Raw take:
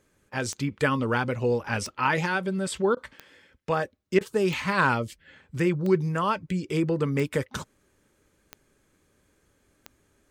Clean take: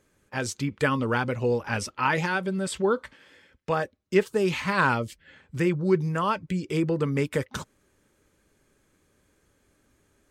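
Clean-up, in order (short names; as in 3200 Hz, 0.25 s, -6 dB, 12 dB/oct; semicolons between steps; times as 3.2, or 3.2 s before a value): de-click; interpolate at 2.95/4.19, 16 ms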